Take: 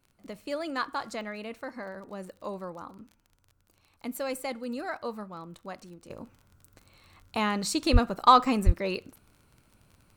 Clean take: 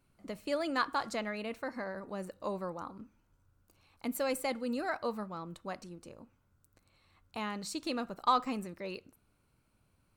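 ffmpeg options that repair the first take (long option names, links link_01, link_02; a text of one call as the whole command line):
ffmpeg -i in.wav -filter_complex "[0:a]adeclick=threshold=4,asplit=3[link_01][link_02][link_03];[link_01]afade=type=out:start_time=7.92:duration=0.02[link_04];[link_02]highpass=frequency=140:width=0.5412,highpass=frequency=140:width=1.3066,afade=type=in:start_time=7.92:duration=0.02,afade=type=out:start_time=8.04:duration=0.02[link_05];[link_03]afade=type=in:start_time=8.04:duration=0.02[link_06];[link_04][link_05][link_06]amix=inputs=3:normalize=0,asplit=3[link_07][link_08][link_09];[link_07]afade=type=out:start_time=8.65:duration=0.02[link_10];[link_08]highpass=frequency=140:width=0.5412,highpass=frequency=140:width=1.3066,afade=type=in:start_time=8.65:duration=0.02,afade=type=out:start_time=8.77:duration=0.02[link_11];[link_09]afade=type=in:start_time=8.77:duration=0.02[link_12];[link_10][link_11][link_12]amix=inputs=3:normalize=0,asetnsamples=nb_out_samples=441:pad=0,asendcmd='6.1 volume volume -10dB',volume=0dB" out.wav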